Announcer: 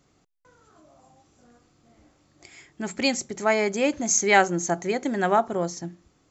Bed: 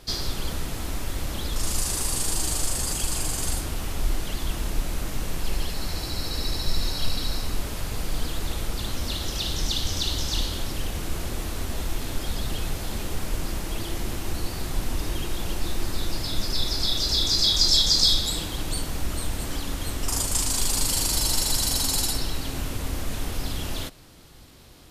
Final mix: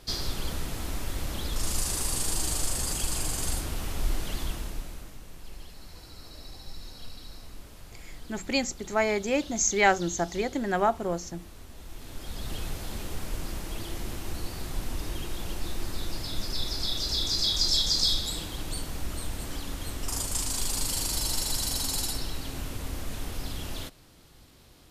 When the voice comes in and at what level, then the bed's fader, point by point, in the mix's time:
5.50 s, -3.5 dB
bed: 4.41 s -3 dB
5.21 s -17 dB
11.76 s -17 dB
12.54 s -5.5 dB

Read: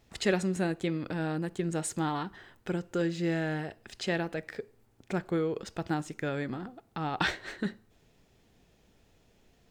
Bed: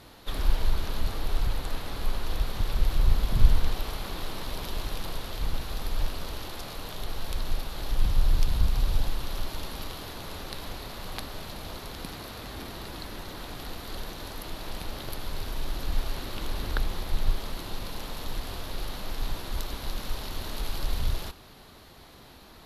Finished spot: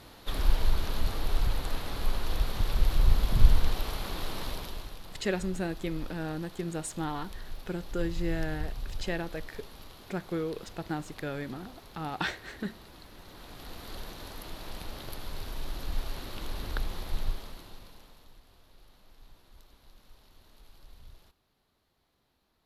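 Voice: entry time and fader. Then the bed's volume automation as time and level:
5.00 s, -3.0 dB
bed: 4.47 s -0.5 dB
4.99 s -12 dB
13.12 s -12 dB
13.84 s -4.5 dB
17.19 s -4.5 dB
18.43 s -24 dB

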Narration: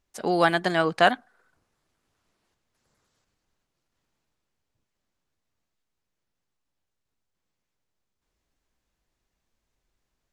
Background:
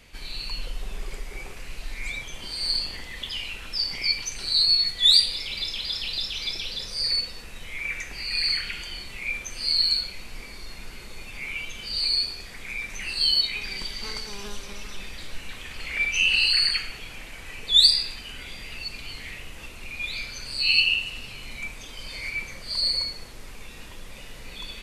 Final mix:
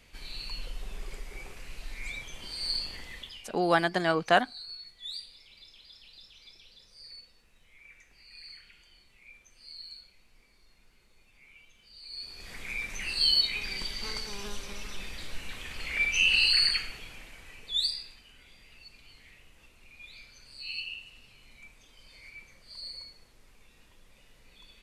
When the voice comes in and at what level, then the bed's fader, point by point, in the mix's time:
3.30 s, -3.5 dB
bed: 3.14 s -6 dB
3.59 s -23.5 dB
12.03 s -23.5 dB
12.51 s -2.5 dB
16.67 s -2.5 dB
18.29 s -17.5 dB

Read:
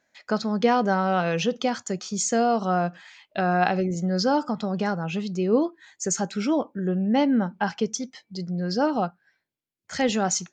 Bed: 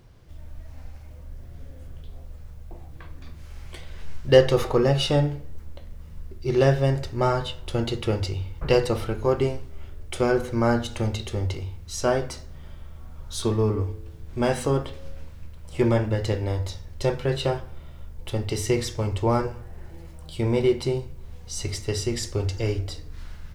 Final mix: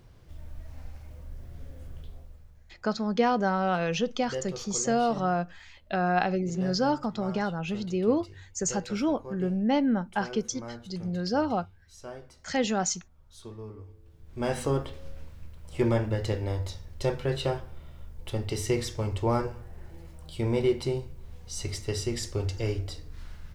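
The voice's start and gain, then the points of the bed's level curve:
2.55 s, -3.5 dB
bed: 2.03 s -2 dB
2.85 s -19.5 dB
13.83 s -19.5 dB
14.58 s -4 dB

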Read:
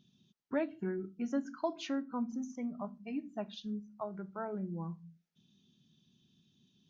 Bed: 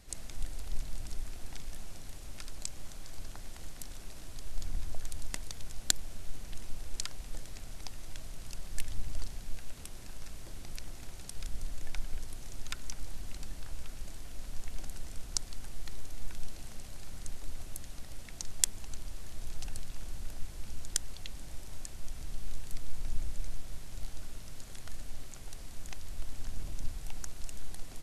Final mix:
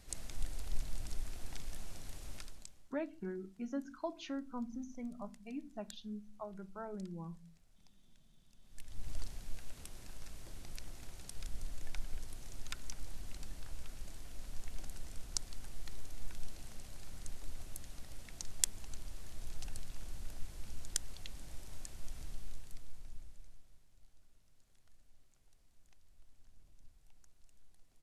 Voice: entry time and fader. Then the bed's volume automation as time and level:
2.40 s, -5.5 dB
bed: 2.35 s -2 dB
2.94 s -25 dB
8.56 s -25 dB
9.09 s -4.5 dB
22.23 s -4.5 dB
23.93 s -25 dB

